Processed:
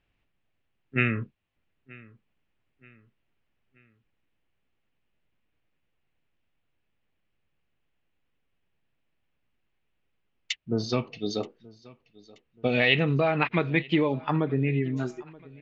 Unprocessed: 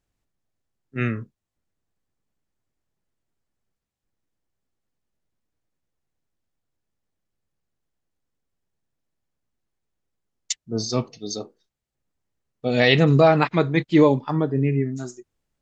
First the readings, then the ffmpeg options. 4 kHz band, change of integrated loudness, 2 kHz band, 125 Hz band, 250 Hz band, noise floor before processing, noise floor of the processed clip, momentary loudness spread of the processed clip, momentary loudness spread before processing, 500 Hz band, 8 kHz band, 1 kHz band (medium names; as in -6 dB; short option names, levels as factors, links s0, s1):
-4.0 dB, -6.0 dB, -1.0 dB, -6.0 dB, -6.0 dB, -83 dBFS, -76 dBFS, 13 LU, 17 LU, -7.5 dB, no reading, -6.5 dB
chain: -af "acompressor=threshold=0.0562:ratio=6,lowpass=f=2700:t=q:w=2.9,aecho=1:1:928|1856|2784:0.0708|0.0311|0.0137,volume=1.41"